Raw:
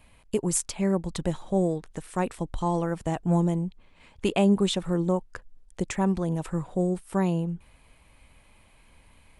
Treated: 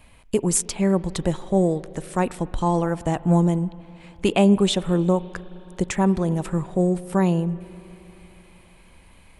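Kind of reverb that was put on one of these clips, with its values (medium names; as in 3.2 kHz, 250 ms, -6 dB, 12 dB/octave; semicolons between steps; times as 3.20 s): spring tank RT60 3.7 s, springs 39/52 ms, chirp 55 ms, DRR 18 dB; trim +5 dB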